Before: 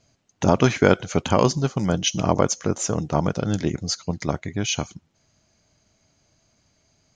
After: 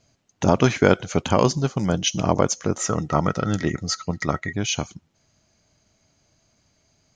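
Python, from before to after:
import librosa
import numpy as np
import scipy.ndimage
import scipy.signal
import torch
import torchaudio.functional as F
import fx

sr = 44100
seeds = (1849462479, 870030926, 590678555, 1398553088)

y = fx.small_body(x, sr, hz=(1300.0, 1900.0), ring_ms=45, db=17, at=(2.77, 4.53))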